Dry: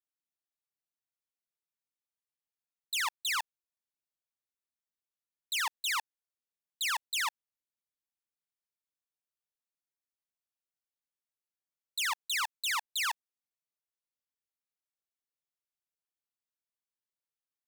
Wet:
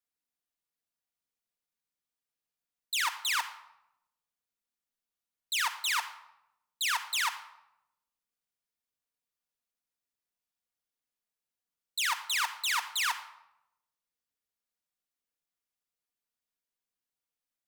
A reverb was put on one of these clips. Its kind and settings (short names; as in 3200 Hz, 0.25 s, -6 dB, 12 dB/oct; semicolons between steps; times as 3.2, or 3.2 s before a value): shoebox room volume 3200 m³, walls furnished, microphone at 1.8 m; gain +1 dB